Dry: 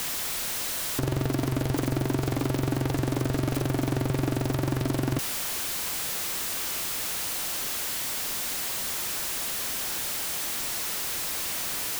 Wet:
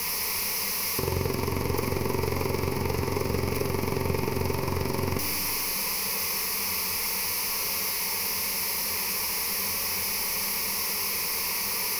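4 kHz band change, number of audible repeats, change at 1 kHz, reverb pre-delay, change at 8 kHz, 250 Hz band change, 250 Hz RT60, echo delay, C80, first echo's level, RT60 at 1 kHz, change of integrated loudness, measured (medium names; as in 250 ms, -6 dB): +2.5 dB, no echo, +3.5 dB, 4 ms, +1.0 dB, -3.5 dB, 2.4 s, no echo, 5.5 dB, no echo, 2.4 s, +1.0 dB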